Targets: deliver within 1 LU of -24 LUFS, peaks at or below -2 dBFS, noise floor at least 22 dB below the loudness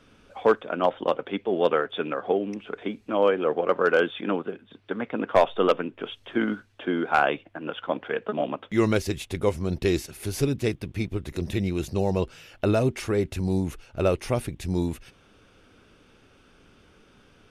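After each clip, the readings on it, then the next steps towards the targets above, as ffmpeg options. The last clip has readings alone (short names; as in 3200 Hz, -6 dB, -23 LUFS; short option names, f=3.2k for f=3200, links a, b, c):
loudness -26.5 LUFS; peak -9.5 dBFS; loudness target -24.0 LUFS
-> -af "volume=2.5dB"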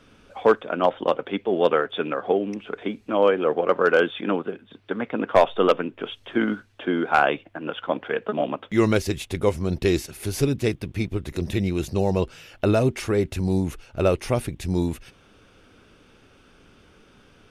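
loudness -24.0 LUFS; peak -7.0 dBFS; noise floor -56 dBFS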